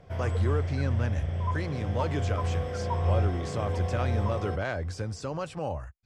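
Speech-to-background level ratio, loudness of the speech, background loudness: -3.0 dB, -33.5 LUFS, -30.5 LUFS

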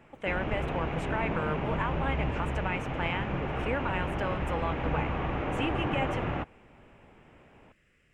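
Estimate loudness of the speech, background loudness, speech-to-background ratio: -35.0 LUFS, -33.0 LUFS, -2.0 dB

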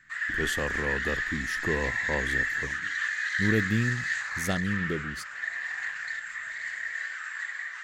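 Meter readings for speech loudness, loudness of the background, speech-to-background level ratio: -32.5 LUFS, -30.0 LUFS, -2.5 dB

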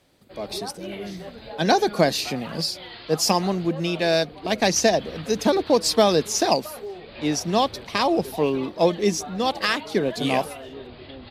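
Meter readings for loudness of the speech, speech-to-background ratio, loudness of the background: -22.5 LUFS, 16.0 dB, -38.5 LUFS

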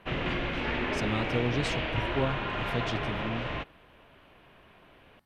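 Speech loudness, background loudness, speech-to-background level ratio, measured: -34.0 LUFS, -32.0 LUFS, -2.0 dB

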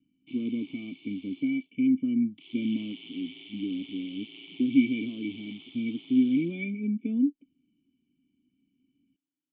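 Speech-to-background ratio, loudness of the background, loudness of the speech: 18.0 dB, -47.5 LUFS, -29.5 LUFS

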